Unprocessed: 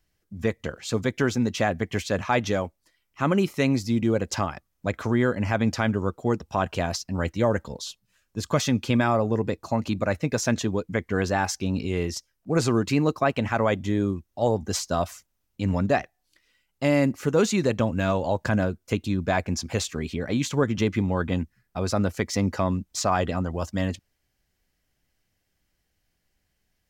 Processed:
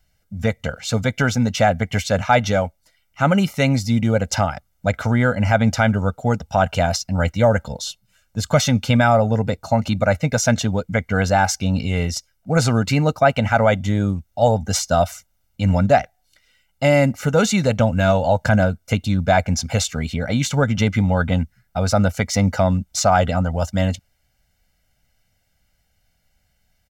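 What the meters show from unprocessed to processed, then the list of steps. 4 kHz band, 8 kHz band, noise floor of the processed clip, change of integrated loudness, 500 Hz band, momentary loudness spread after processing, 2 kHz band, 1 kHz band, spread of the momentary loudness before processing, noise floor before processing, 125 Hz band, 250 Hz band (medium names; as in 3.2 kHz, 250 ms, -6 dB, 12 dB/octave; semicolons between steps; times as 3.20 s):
+7.0 dB, +7.5 dB, -66 dBFS, +6.5 dB, +6.0 dB, 7 LU, +7.5 dB, +8.0 dB, 7 LU, -75 dBFS, +8.5 dB, +4.5 dB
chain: comb 1.4 ms, depth 76%; trim +5 dB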